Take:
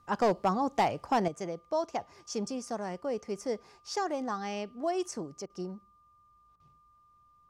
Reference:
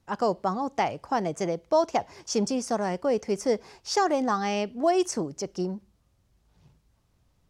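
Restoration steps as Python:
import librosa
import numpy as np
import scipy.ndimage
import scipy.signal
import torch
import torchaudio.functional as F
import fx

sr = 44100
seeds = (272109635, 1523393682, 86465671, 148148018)

y = fx.fix_declip(x, sr, threshold_db=-19.5)
y = fx.notch(y, sr, hz=1200.0, q=30.0)
y = fx.fix_interpolate(y, sr, at_s=(5.46, 6.56), length_ms=38.0)
y = fx.gain(y, sr, db=fx.steps((0.0, 0.0), (1.28, 8.5)))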